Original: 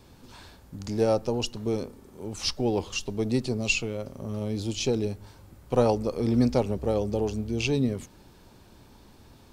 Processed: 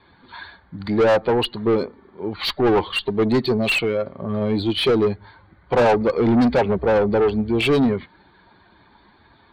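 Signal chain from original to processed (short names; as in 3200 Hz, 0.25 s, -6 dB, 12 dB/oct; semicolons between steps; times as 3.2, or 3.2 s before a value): per-bin expansion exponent 1.5; Chebyshev low-pass 4600 Hz, order 10; overdrive pedal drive 31 dB, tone 2000 Hz, clips at -9.5 dBFS; gain +1.5 dB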